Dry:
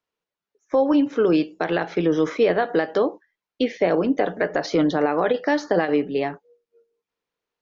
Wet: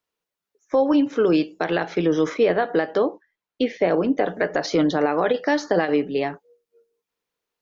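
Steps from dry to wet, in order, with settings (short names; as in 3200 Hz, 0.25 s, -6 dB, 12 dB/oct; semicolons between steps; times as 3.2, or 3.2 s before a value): high shelf 5400 Hz +6 dB, from 2.34 s -4 dB, from 4.28 s +6.5 dB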